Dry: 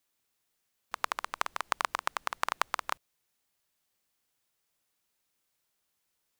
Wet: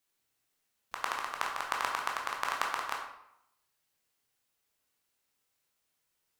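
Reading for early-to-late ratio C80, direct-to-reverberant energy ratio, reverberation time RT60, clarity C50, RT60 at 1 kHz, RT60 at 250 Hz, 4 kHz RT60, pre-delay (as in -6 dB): 7.0 dB, -1.0 dB, 0.80 s, 4.5 dB, 0.80 s, 0.80 s, 0.55 s, 13 ms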